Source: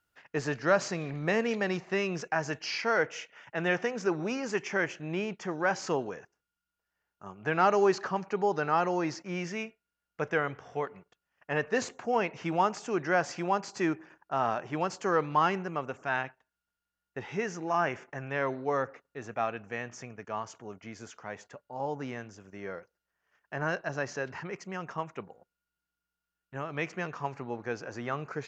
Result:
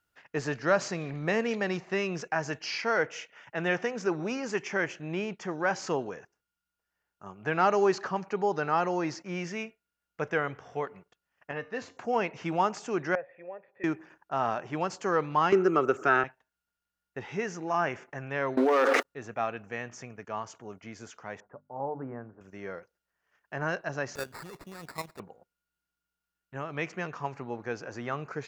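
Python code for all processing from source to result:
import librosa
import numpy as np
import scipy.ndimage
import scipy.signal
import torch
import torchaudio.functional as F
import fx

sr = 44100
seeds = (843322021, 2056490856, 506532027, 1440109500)

y = fx.chain(x, sr, fx.lowpass(hz=4600.0, slope=12),
    fx.peak_eq(hz=400.0, db=-5.5, octaves=0.23),
    fx.comb_fb(f0_hz=93.0, decay_s=0.35, harmonics='odd', damping=0.0, mix_pct=60), at=(11.51, 11.97))
y = fx.chain(y, sr, fx.formant_cascade(vowel='e'),
    fx.peak_eq(hz=240.0, db=-7.5, octaves=0.9), at=(13.15, 13.84))
y = fx.chain(y, sr, fx.high_shelf(hz=6700.0, db=9.0),
    fx.small_body(hz=(370.0, 1300.0), ring_ms=30, db=17),
    fx.band_squash(depth_pct=70), at=(15.52, 16.24))
y = fx.chain(y, sr, fx.leveller(passes=2),
    fx.brickwall_highpass(low_hz=230.0),
    fx.env_flatten(amount_pct=100), at=(18.57, 19.03))
y = fx.chain(y, sr, fx.cheby2_lowpass(hz=4500.0, order=4, stop_db=60),
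    fx.hum_notches(base_hz=50, count=6), at=(21.4, 22.41))
y = fx.chain(y, sr, fx.level_steps(step_db=11),
    fx.peak_eq(hz=7000.0, db=10.5, octaves=1.1),
    fx.sample_hold(seeds[0], rate_hz=3100.0, jitter_pct=0), at=(24.15, 25.2))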